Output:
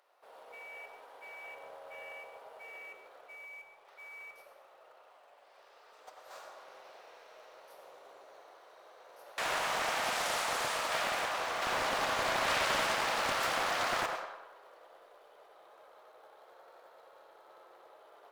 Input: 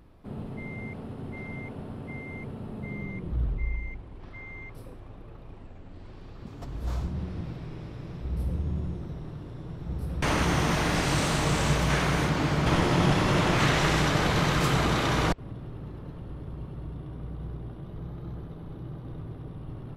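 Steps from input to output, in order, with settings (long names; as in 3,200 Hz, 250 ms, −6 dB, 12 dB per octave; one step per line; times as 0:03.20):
Butterworth high-pass 490 Hz 36 dB per octave
high-shelf EQ 11,000 Hz +3 dB
floating-point word with a short mantissa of 2 bits
speed change +9%
bucket-brigade delay 96 ms, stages 1,024, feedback 51%, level −4 dB
comb and all-pass reverb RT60 0.89 s, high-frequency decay 0.8×, pre-delay 65 ms, DRR 7 dB
highs frequency-modulated by the lows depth 0.43 ms
level −5.5 dB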